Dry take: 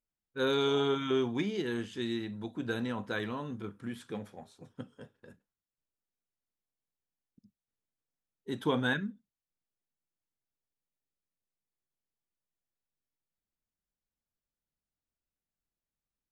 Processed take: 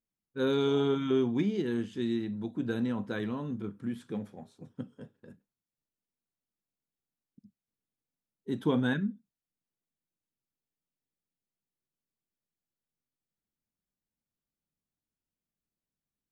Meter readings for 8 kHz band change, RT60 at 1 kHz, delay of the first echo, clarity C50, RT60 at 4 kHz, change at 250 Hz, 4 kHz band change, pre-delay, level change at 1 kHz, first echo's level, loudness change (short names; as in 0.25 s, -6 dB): n/a, none, none, none, none, +4.5 dB, -4.5 dB, none, -3.0 dB, none, +2.0 dB